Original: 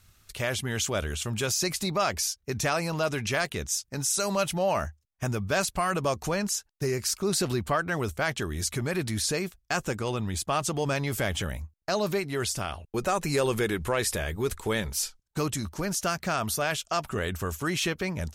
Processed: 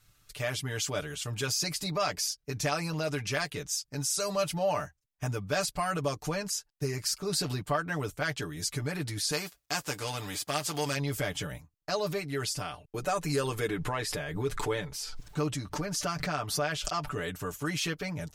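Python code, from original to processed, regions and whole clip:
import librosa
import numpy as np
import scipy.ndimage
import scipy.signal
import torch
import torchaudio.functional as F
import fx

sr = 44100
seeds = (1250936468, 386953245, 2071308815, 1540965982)

y = fx.envelope_flatten(x, sr, power=0.6, at=(9.31, 10.95), fade=0.02)
y = fx.highpass(y, sr, hz=70.0, slope=12, at=(9.31, 10.95), fade=0.02)
y = fx.peak_eq(y, sr, hz=160.0, db=-5.5, octaves=0.92, at=(9.31, 10.95), fade=0.02)
y = fx.chain(y, sr, fx.lowpass(hz=3500.0, slope=6),
    fx.pre_swell(db_per_s=36.0), at=(13.68, 17.14))
y = y + 0.87 * np.pad(y, (int(6.8 * sr / 1000.0), 0))[:len(y)]
y = fx.dynamic_eq(y, sr, hz=4800.0, q=5.9, threshold_db=-48.0, ratio=4.0, max_db=6)
y = y * 10.0 ** (-6.5 / 20.0)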